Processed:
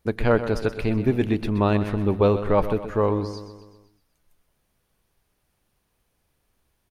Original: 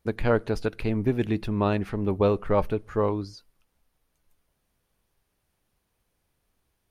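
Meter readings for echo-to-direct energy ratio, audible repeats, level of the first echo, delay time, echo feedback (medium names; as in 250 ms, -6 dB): -10.0 dB, 5, -11.5 dB, 126 ms, 53%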